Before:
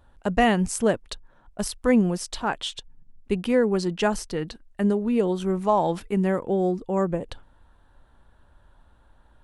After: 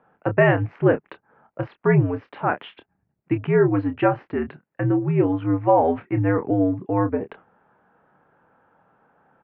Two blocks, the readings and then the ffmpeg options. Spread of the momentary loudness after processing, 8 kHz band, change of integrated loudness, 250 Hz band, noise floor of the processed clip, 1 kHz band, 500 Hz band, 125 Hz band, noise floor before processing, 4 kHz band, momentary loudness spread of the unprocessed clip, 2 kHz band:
11 LU, under -40 dB, +3.0 dB, +1.5 dB, -75 dBFS, +2.0 dB, +3.0 dB, +8.0 dB, -58 dBFS, under -10 dB, 11 LU, +3.5 dB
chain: -filter_complex "[0:a]highpass=f=220:t=q:w=0.5412,highpass=f=220:t=q:w=1.307,lowpass=f=2.4k:t=q:w=0.5176,lowpass=f=2.4k:t=q:w=0.7071,lowpass=f=2.4k:t=q:w=1.932,afreqshift=-79,asplit=2[a][b];[b]adelay=27,volume=-9.5dB[c];[a][c]amix=inputs=2:normalize=0,volume=4dB"

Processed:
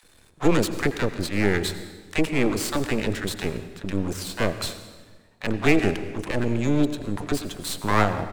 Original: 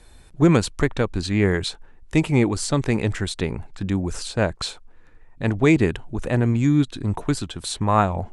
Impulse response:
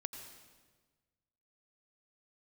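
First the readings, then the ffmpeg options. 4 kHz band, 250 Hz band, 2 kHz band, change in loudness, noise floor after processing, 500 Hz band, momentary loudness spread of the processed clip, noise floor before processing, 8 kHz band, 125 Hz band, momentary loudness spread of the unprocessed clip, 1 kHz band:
-1.0 dB, -3.5 dB, +0.5 dB, -3.0 dB, -56 dBFS, -2.0 dB, 9 LU, -48 dBFS, -1.5 dB, -7.0 dB, 10 LU, -2.5 dB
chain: -filter_complex "[0:a]highpass=f=170:p=1,aeval=exprs='max(val(0),0)':c=same,acrossover=split=780[a][b];[a]adelay=30[c];[c][b]amix=inputs=2:normalize=0,asplit=2[d][e];[1:a]atrim=start_sample=2205[f];[e][f]afir=irnorm=-1:irlink=0,volume=3dB[g];[d][g]amix=inputs=2:normalize=0,volume=-3dB"

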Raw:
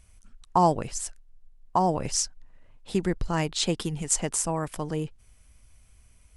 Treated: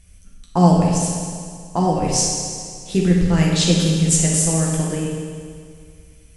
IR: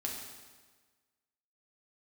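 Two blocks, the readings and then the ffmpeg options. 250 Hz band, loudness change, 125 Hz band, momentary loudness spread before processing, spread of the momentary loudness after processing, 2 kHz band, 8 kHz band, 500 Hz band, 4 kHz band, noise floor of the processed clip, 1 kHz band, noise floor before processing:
+13.0 dB, +9.5 dB, +14.5 dB, 10 LU, 14 LU, +7.5 dB, +9.5 dB, +7.0 dB, +9.0 dB, -47 dBFS, +2.5 dB, -58 dBFS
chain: -filter_complex "[0:a]equalizer=f=1k:t=o:w=0.84:g=-9.5[a];[1:a]atrim=start_sample=2205,asetrate=29547,aresample=44100[b];[a][b]afir=irnorm=-1:irlink=0,volume=5dB"

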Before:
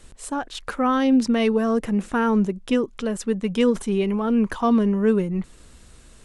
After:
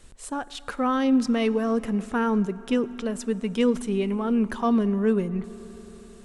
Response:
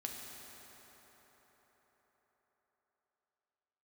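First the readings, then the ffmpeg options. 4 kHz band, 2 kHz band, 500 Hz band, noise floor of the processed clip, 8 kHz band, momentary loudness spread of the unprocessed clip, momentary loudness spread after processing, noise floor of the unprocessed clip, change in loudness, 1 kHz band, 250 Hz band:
-3.5 dB, -3.5 dB, -3.0 dB, -46 dBFS, -3.5 dB, 11 LU, 12 LU, -49 dBFS, -3.0 dB, -3.5 dB, -3.0 dB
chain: -filter_complex "[0:a]asplit=2[a][b];[1:a]atrim=start_sample=2205,asetrate=42777,aresample=44100[c];[b][c]afir=irnorm=-1:irlink=0,volume=-13dB[d];[a][d]amix=inputs=2:normalize=0,volume=-4.5dB"

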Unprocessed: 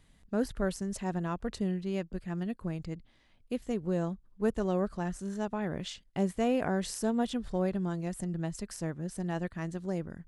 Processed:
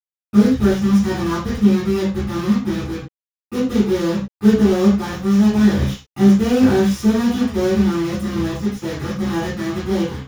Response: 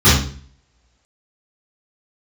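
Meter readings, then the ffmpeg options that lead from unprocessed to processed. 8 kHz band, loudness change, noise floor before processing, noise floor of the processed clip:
+9.5 dB, +16.5 dB, -64 dBFS, under -85 dBFS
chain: -filter_complex "[0:a]bandreject=f=4.2k:w=5.6,acrossover=split=180|3000[a][b][c];[a]acompressor=threshold=-38dB:ratio=6[d];[d][b][c]amix=inputs=3:normalize=0,acrusher=bits=5:mix=0:aa=0.000001[e];[1:a]atrim=start_sample=2205,atrim=end_sample=6174[f];[e][f]afir=irnorm=-1:irlink=0,volume=-16dB"

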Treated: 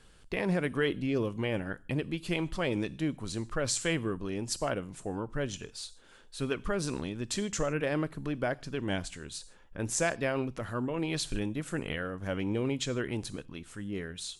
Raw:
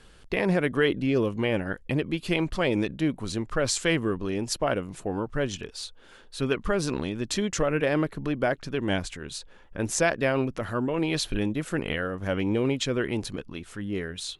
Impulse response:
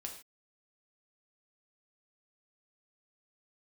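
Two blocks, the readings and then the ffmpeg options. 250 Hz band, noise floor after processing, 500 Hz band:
-6.0 dB, -56 dBFS, -6.5 dB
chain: -filter_complex "[0:a]asplit=2[a][b];[b]equalizer=f=125:t=o:w=1:g=5,equalizer=f=500:t=o:w=1:g=-12,equalizer=f=2k:t=o:w=1:g=-6,equalizer=f=8k:t=o:w=1:g=10[c];[1:a]atrim=start_sample=2205[d];[c][d]afir=irnorm=-1:irlink=0,volume=-7.5dB[e];[a][e]amix=inputs=2:normalize=0,volume=-7dB"

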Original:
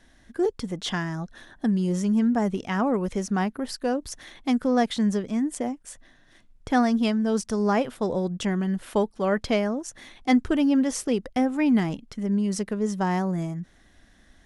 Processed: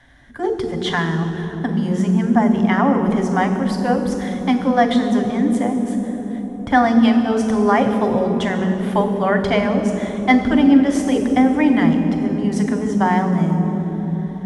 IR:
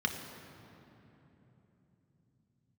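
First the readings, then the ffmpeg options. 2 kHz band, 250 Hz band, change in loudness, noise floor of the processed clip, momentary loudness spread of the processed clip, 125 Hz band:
+10.0 dB, +8.0 dB, +7.5 dB, -28 dBFS, 8 LU, +9.0 dB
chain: -filter_complex "[1:a]atrim=start_sample=2205,asetrate=26901,aresample=44100[a];[0:a][a]afir=irnorm=-1:irlink=0,volume=-2dB"

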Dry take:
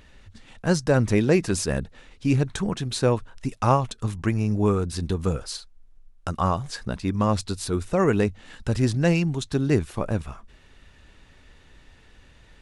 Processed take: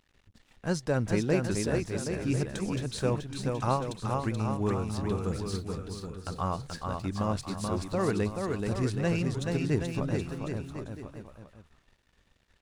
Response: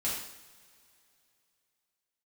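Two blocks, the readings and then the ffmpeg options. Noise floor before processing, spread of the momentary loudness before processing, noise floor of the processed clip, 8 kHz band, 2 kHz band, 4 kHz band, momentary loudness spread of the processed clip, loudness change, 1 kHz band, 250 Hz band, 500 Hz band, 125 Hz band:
-54 dBFS, 10 LU, -69 dBFS, -6.5 dB, -6.0 dB, -6.5 dB, 9 LU, -6.5 dB, -6.0 dB, -6.0 dB, -6.0 dB, -6.0 dB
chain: -af "aeval=exprs='sgn(val(0))*max(abs(val(0))-0.00335,0)':c=same,aecho=1:1:430|774|1049|1269|1445:0.631|0.398|0.251|0.158|0.1,volume=-8dB"

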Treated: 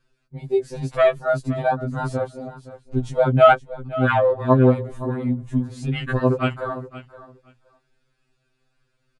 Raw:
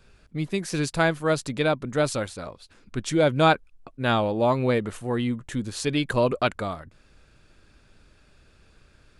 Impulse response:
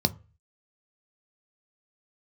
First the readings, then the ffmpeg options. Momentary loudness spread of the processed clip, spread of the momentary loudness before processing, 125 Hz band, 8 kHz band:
15 LU, 12 LU, +6.0 dB, under -10 dB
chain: -af "bandreject=f=60:t=h:w=6,bandreject=f=120:t=h:w=6,bandreject=f=180:t=h:w=6,bandreject=f=240:t=h:w=6,afwtdn=0.0398,aecho=1:1:519|1038:0.158|0.0254,afftfilt=real='re*2.45*eq(mod(b,6),0)':imag='im*2.45*eq(mod(b,6),0)':win_size=2048:overlap=0.75,volume=6.5dB"

